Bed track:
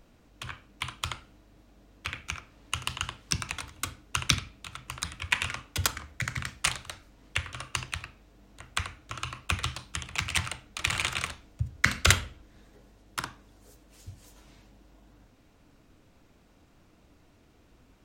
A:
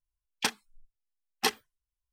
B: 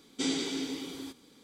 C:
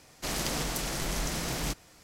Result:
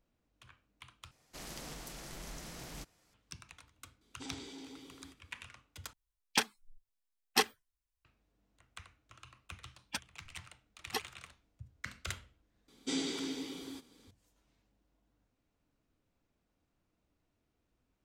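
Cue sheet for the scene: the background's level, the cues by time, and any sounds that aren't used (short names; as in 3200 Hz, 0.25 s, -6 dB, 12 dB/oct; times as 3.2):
bed track -20 dB
1.11 replace with C -14.5 dB
4.01 add B -13.5 dB + core saturation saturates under 870 Hz
5.93 replace with A -1 dB
9.5 add A -7 dB + per-bin expansion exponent 3
12.68 add B -4.5 dB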